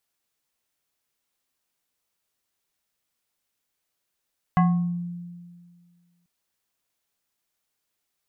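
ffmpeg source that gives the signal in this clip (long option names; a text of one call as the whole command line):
ffmpeg -f lavfi -i "aevalsrc='0.2*pow(10,-3*t/1.89)*sin(2*PI*174*t+1*pow(10,-3*t/0.6)*sin(2*PI*5.27*174*t))':duration=1.69:sample_rate=44100" out.wav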